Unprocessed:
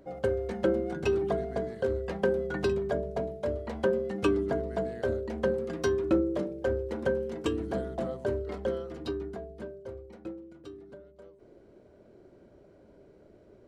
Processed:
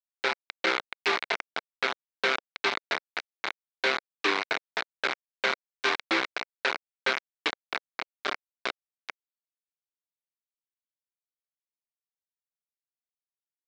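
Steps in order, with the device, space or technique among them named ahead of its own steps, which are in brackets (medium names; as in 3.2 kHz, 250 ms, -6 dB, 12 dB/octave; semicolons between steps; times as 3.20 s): hand-held game console (bit crusher 4-bit; cabinet simulation 470–5100 Hz, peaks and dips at 550 Hz -6 dB, 1.5 kHz +4 dB, 2.2 kHz +9 dB, 3.9 kHz +6 dB)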